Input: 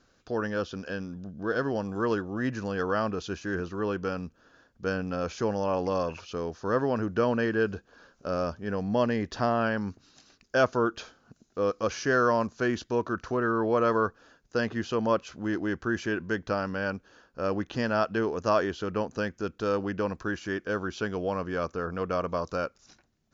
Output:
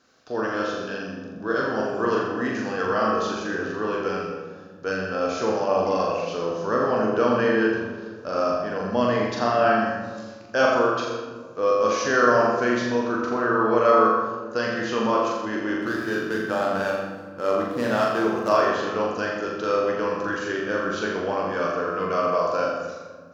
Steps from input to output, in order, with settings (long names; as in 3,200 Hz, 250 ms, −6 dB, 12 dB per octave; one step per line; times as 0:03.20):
0:15.76–0:18.49: running median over 15 samples
high-pass filter 330 Hz 6 dB per octave
flutter between parallel walls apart 7.1 metres, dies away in 0.67 s
convolution reverb RT60 1.7 s, pre-delay 7 ms, DRR 0.5 dB
level +2.5 dB